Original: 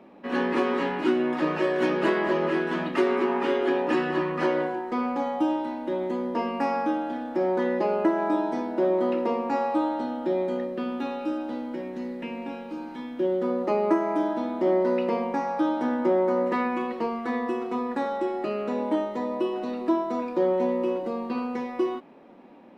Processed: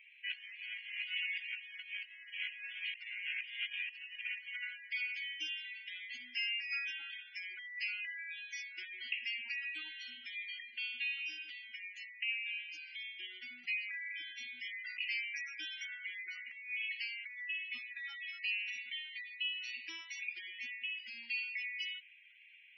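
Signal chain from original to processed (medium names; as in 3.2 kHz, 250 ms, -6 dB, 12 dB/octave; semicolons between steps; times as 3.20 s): elliptic high-pass 1.8 kHz, stop band 40 dB; spectral gate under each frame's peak -15 dB strong; compressor with a negative ratio -45 dBFS, ratio -0.5; static phaser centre 2.6 kHz, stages 8; trim +9.5 dB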